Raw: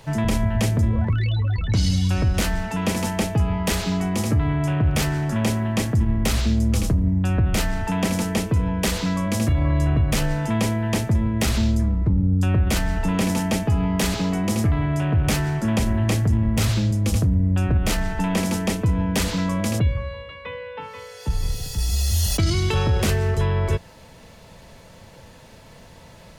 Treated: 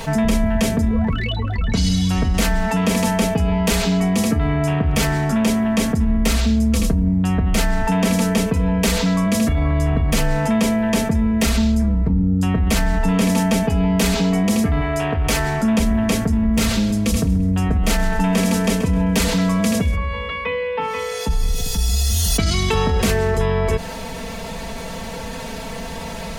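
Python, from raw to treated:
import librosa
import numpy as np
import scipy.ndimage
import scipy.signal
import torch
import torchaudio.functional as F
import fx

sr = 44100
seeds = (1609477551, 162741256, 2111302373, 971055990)

y = fx.peak_eq(x, sr, hz=180.0, db=fx.line((14.8, -14.5), (15.6, -6.0)), octaves=1.1, at=(14.8, 15.6), fade=0.02)
y = fx.echo_feedback(y, sr, ms=131, feedback_pct=35, wet_db=-15.5, at=(16.53, 19.95), fade=0.02)
y = y + 0.79 * np.pad(y, (int(4.4 * sr / 1000.0), 0))[:len(y)]
y = fx.env_flatten(y, sr, amount_pct=50)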